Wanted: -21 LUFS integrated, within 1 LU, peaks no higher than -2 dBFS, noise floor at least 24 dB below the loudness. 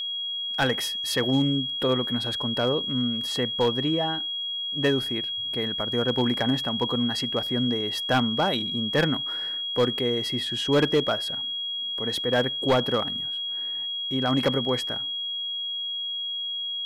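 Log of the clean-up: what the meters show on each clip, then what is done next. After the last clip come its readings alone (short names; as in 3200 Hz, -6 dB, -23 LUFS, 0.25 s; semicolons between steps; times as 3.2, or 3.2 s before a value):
clipped 0.4%; flat tops at -15.0 dBFS; steady tone 3300 Hz; tone level -28 dBFS; loudness -25.0 LUFS; peak -15.0 dBFS; loudness target -21.0 LUFS
-> clip repair -15 dBFS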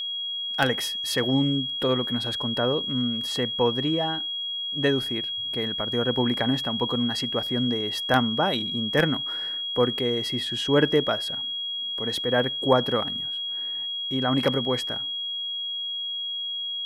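clipped 0.0%; steady tone 3300 Hz; tone level -28 dBFS
-> notch 3300 Hz, Q 30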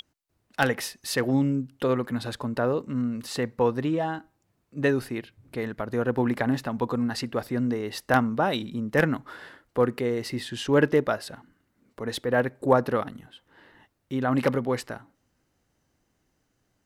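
steady tone none; loudness -27.0 LUFS; peak -5.5 dBFS; loudness target -21.0 LUFS
-> gain +6 dB; limiter -2 dBFS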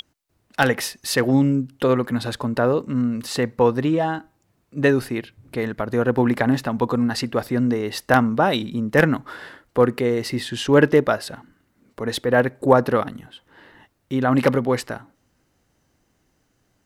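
loudness -21.0 LUFS; peak -2.0 dBFS; noise floor -68 dBFS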